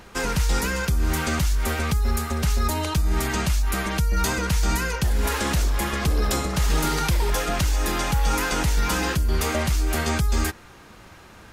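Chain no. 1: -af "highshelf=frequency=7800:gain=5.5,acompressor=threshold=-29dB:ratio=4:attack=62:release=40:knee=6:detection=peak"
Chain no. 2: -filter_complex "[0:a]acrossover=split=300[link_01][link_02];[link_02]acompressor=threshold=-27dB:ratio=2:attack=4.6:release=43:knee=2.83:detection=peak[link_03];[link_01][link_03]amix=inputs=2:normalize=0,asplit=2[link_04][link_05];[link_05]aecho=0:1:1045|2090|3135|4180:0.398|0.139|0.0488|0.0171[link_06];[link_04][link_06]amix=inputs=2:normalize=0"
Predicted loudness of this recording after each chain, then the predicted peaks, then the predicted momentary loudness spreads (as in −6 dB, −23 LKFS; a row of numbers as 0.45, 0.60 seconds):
−27.0, −25.0 LKFS; −13.5, −11.0 dBFS; 2, 2 LU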